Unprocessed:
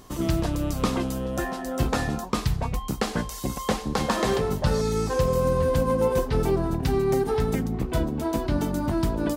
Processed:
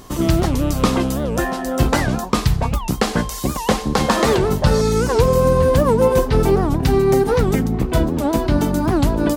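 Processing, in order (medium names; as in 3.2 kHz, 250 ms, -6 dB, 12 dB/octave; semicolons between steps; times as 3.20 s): warped record 78 rpm, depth 250 cents; trim +8 dB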